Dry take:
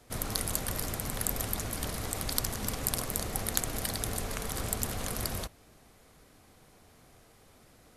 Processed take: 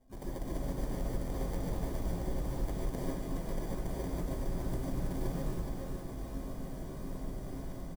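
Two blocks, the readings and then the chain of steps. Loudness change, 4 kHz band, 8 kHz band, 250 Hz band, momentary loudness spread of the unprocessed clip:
-6.0 dB, -16.5 dB, -19.0 dB, +2.5 dB, 4 LU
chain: minimum comb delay 3.2 ms; comb 6.5 ms, depth 92%; AGC gain up to 16 dB; steep low-pass 12000 Hz 48 dB/oct; reverse; compressor 10:1, threshold -36 dBFS, peak gain reduction 20.5 dB; reverse; FFT band-reject 270–8500 Hz; sample-and-hold 33×; bell 2600 Hz -10.5 dB 1.9 oct; on a send: split-band echo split 340 Hz, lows 0.232 s, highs 0.419 s, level -4.5 dB; on the sum: non-linear reverb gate 0.17 s rising, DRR -5.5 dB

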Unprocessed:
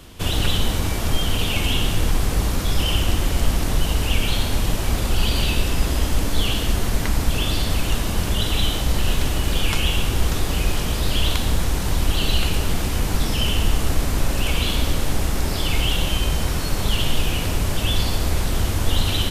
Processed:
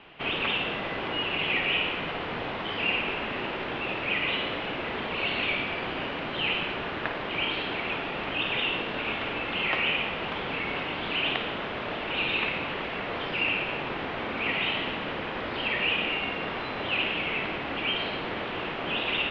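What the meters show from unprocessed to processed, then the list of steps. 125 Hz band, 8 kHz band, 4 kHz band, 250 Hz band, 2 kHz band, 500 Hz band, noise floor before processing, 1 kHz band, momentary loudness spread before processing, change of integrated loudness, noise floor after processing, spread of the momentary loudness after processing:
-20.0 dB, under -35 dB, -5.5 dB, -8.5 dB, +2.0 dB, -3.0 dB, -24 dBFS, -1.5 dB, 2 LU, -6.0 dB, -34 dBFS, 6 LU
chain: flutter echo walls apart 9.1 m, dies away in 0.31 s; mistuned SSB -310 Hz 530–3400 Hz

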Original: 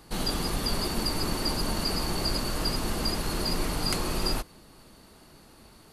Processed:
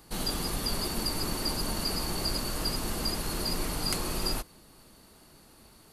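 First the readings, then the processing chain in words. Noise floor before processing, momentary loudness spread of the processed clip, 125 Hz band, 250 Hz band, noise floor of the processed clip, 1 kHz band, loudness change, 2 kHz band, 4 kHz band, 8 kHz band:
-54 dBFS, 1 LU, -3.5 dB, -3.5 dB, -57 dBFS, -3.5 dB, -2.0 dB, -3.0 dB, -2.0 dB, +0.5 dB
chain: high shelf 7800 Hz +7.5 dB; gain -3.5 dB

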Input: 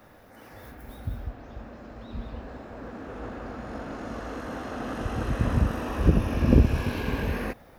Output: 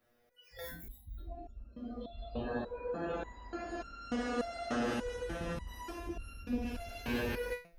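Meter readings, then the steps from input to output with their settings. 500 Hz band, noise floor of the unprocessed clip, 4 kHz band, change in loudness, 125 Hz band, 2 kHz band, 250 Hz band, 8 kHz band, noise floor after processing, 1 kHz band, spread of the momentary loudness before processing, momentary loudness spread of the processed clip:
-4.5 dB, -52 dBFS, -3.5 dB, -11.5 dB, -19.5 dB, -5.0 dB, -9.5 dB, -3.5 dB, -66 dBFS, -6.0 dB, 21 LU, 13 LU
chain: graphic EQ 125/250/1000 Hz -8/-3/-10 dB; in parallel at -9 dB: wavefolder -18.5 dBFS; on the sum: notches 60/120/180 Hz; spectral noise reduction 25 dB; dynamic EQ 900 Hz, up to +4 dB, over -53 dBFS, Q 1.8; reverse; compressor 8:1, threshold -36 dBFS, peak gain reduction 19.5 dB; reverse; stepped resonator 3.4 Hz 120–1400 Hz; gain +17.5 dB

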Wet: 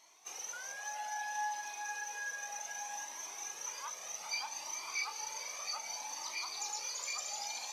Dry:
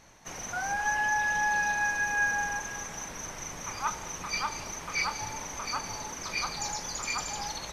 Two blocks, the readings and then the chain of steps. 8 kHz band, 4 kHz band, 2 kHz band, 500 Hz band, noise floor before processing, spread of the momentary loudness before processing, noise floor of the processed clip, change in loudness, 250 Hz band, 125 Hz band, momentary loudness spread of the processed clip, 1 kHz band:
-4.0 dB, -4.0 dB, -13.5 dB, -11.5 dB, -42 dBFS, 11 LU, -48 dBFS, -8.5 dB, -23.5 dB, under -30 dB, 5 LU, -10.0 dB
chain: in parallel at -9.5 dB: hard clip -26 dBFS, distortion -14 dB; on the sum: HPF 740 Hz 12 dB/oct; on a send: diffused feedback echo 0.479 s, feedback 46%, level -8.5 dB; on the sum: compressor 1.5:1, threshold -34 dBFS, peak gain reduction 5 dB; bell 1500 Hz -11.5 dB 0.95 oct; cascading flanger rising 0.63 Hz

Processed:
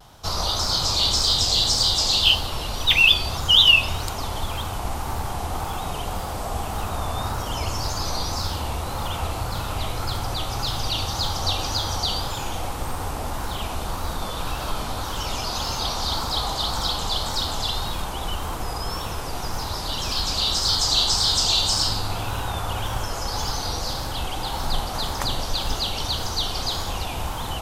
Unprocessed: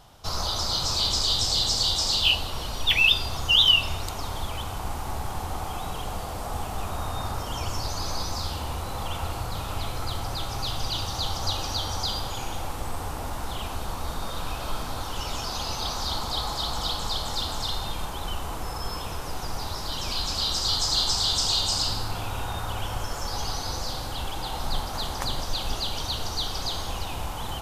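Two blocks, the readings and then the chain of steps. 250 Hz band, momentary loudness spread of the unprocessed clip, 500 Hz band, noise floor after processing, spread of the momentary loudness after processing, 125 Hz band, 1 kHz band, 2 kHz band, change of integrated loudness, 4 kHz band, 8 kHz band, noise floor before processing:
+4.0 dB, 12 LU, +4.0 dB, -30 dBFS, 12 LU, +4.0 dB, +4.0 dB, +4.5 dB, +4.0 dB, +4.0 dB, +4.0 dB, -33 dBFS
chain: added harmonics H 8 -40 dB, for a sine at -8 dBFS; vibrato 1.8 Hz 82 cents; gain +4 dB

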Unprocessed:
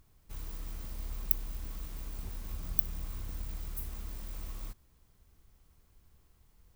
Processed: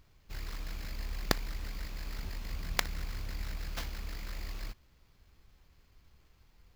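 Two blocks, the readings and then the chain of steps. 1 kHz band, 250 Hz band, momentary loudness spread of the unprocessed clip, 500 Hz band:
+11.0 dB, +5.5 dB, 14 LU, +10.0 dB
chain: sample-rate reducer 9300 Hz, jitter 0%; gain +1 dB

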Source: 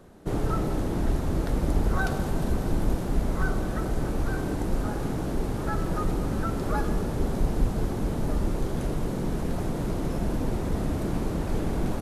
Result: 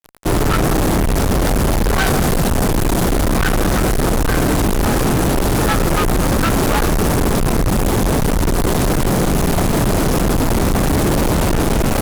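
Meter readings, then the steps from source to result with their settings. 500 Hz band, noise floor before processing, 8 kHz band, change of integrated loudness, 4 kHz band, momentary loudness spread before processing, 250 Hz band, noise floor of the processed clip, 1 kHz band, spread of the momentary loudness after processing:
+13.0 dB, -31 dBFS, +21.5 dB, +12.5 dB, +20.0 dB, 3 LU, +12.0 dB, -16 dBFS, +14.5 dB, 1 LU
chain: high shelf 6400 Hz +8 dB; fuzz box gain 43 dB, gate -43 dBFS

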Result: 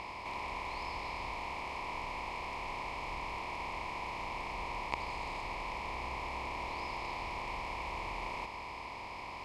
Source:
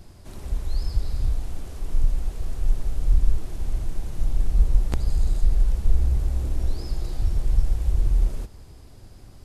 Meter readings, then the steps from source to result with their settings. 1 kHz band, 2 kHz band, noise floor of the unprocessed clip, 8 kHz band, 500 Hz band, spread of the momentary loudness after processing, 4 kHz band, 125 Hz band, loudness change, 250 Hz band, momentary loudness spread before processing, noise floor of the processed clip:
+12.5 dB, +11.5 dB, -45 dBFS, n/a, -1.5 dB, 2 LU, +1.0 dB, -23.5 dB, -12.0 dB, -9.0 dB, 9 LU, -44 dBFS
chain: per-bin compression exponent 0.4; double band-pass 1500 Hz, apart 1.2 oct; gain +9 dB

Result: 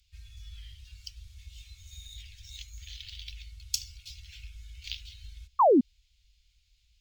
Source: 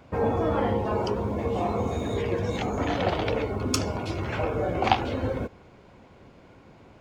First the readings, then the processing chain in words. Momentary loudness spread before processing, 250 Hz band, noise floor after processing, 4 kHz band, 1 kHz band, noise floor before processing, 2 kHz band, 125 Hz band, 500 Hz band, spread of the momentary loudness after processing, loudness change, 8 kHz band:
5 LU, -5.0 dB, -69 dBFS, -3.5 dB, -4.0 dB, -53 dBFS, -18.0 dB, -18.0 dB, -6.0 dB, 24 LU, -1.5 dB, -2.0 dB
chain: inverse Chebyshev band-stop 190–970 Hz, stop band 70 dB; painted sound fall, 5.59–5.81, 220–1200 Hz -19 dBFS; decimation joined by straight lines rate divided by 2×

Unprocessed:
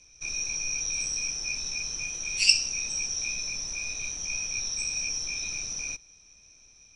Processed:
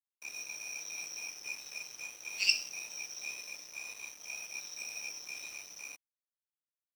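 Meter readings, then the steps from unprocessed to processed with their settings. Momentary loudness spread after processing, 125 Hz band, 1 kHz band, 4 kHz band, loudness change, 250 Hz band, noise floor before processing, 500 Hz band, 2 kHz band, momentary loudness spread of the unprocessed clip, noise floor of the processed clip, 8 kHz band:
14 LU, under -20 dB, -4.5 dB, -10.0 dB, -10.0 dB, -14.0 dB, -56 dBFS, -7.0 dB, -6.5 dB, 9 LU, under -85 dBFS, -13.5 dB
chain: HPF 400 Hz 12 dB/oct; air absorption 120 m; crossover distortion -44 dBFS; gain -2.5 dB

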